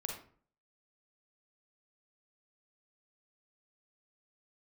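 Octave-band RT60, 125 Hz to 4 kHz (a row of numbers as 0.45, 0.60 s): 0.55, 0.55, 0.50, 0.45, 0.40, 0.30 s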